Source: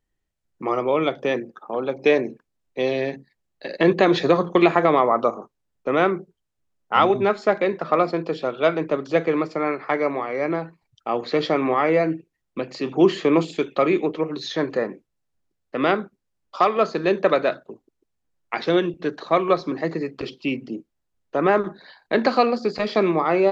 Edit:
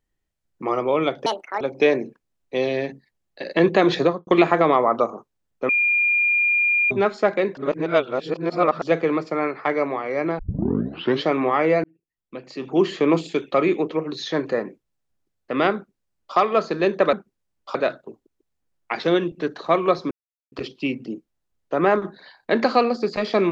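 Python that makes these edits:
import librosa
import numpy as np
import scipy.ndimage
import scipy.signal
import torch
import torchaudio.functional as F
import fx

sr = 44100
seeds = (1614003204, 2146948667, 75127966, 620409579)

y = fx.studio_fade_out(x, sr, start_s=4.24, length_s=0.27)
y = fx.edit(y, sr, fx.speed_span(start_s=1.26, length_s=0.59, speed=1.69),
    fx.bleep(start_s=5.93, length_s=1.22, hz=2410.0, db=-16.0),
    fx.reverse_span(start_s=7.81, length_s=1.25),
    fx.tape_start(start_s=10.63, length_s=0.87),
    fx.fade_in_span(start_s=12.08, length_s=1.3),
    fx.duplicate(start_s=15.99, length_s=0.62, to_s=17.37),
    fx.silence(start_s=19.73, length_s=0.41), tone=tone)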